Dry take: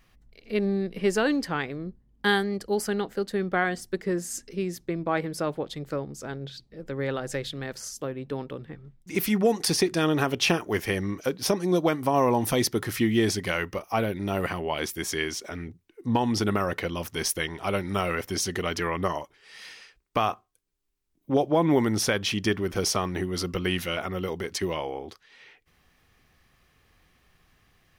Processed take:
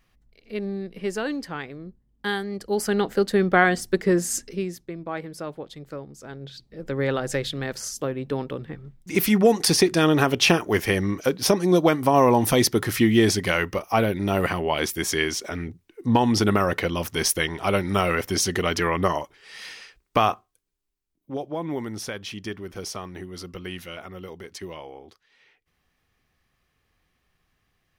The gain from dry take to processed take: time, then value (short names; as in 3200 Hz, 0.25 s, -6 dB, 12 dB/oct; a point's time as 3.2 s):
2.39 s -4 dB
3.1 s +7.5 dB
4.35 s +7.5 dB
4.89 s -5 dB
6.21 s -5 dB
6.9 s +5 dB
20.27 s +5 dB
21.33 s -8 dB